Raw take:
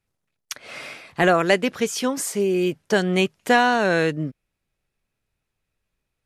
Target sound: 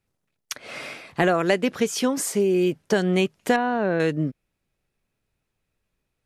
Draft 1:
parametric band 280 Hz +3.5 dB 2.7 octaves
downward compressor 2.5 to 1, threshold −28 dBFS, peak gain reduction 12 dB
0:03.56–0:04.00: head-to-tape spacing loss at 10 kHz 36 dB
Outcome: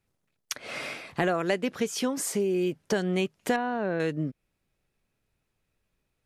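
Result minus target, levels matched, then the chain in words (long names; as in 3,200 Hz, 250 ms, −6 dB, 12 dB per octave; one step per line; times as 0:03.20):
downward compressor: peak gain reduction +6 dB
parametric band 280 Hz +3.5 dB 2.7 octaves
downward compressor 2.5 to 1, threshold −18 dBFS, peak gain reduction 6 dB
0:03.56–0:04.00: head-to-tape spacing loss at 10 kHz 36 dB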